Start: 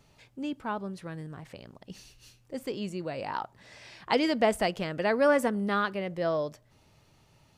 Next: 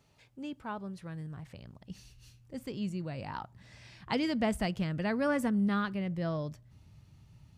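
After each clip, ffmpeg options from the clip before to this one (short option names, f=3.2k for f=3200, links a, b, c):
-af "highpass=45,asubboost=boost=7:cutoff=180,volume=-5.5dB"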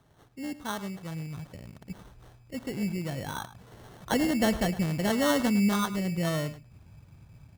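-filter_complex "[0:a]acrusher=samples=18:mix=1:aa=0.000001,asplit=2[a][b];[b]adelay=105,volume=-15dB,highshelf=f=4k:g=-2.36[c];[a][c]amix=inputs=2:normalize=0,volume=4.5dB"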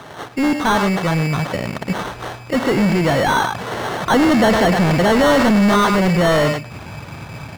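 -filter_complex "[0:a]asplit=2[a][b];[b]highpass=f=720:p=1,volume=33dB,asoftclip=type=tanh:threshold=-14dB[c];[a][c]amix=inputs=2:normalize=0,lowpass=f=2.8k:p=1,volume=-6dB,volume=7dB"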